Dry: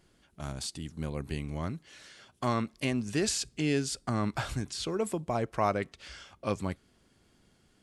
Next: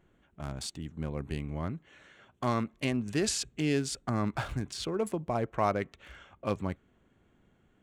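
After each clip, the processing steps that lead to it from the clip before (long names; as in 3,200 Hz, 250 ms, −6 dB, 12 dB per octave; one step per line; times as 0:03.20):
adaptive Wiener filter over 9 samples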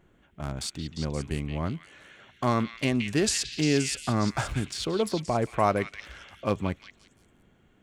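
echo through a band-pass that steps 175 ms, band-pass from 2,700 Hz, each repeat 0.7 octaves, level −2.5 dB
level +4.5 dB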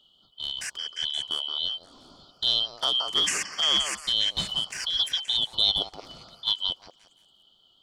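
band-splitting scrambler in four parts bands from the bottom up 2413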